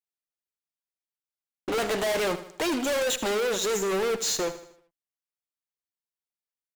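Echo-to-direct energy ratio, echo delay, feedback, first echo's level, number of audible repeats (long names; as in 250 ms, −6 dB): −12.0 dB, 78 ms, 46%, −13.0 dB, 4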